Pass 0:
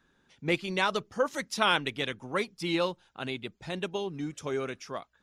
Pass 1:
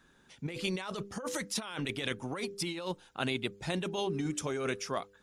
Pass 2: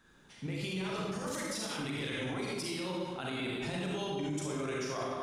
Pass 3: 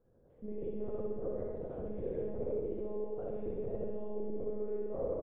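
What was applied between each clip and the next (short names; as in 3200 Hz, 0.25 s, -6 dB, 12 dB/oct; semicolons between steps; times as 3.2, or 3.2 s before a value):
bell 9200 Hz +7.5 dB 0.8 oct; de-hum 99.87 Hz, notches 5; negative-ratio compressor -35 dBFS, ratio -1
reverb RT60 1.4 s, pre-delay 34 ms, DRR -4 dB; limiter -26 dBFS, peak gain reduction 10.5 dB; gain -2 dB
monotone LPC vocoder at 8 kHz 210 Hz; synth low-pass 500 Hz, resonance Q 4.9; feedback echo 63 ms, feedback 60%, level -5.5 dB; gain -6 dB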